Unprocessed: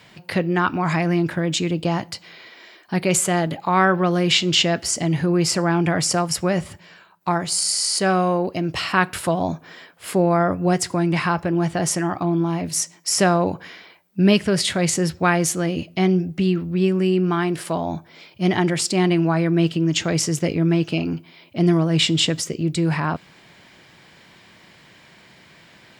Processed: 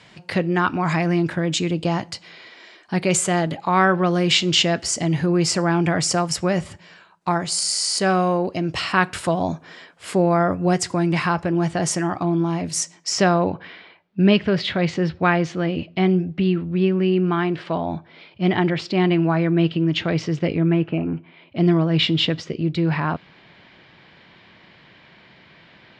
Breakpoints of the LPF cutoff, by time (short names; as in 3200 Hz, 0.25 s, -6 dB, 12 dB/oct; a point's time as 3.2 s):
LPF 24 dB/oct
12.94 s 9100 Hz
13.46 s 3900 Hz
20.55 s 3900 Hz
21.02 s 1900 Hz
21.61 s 4200 Hz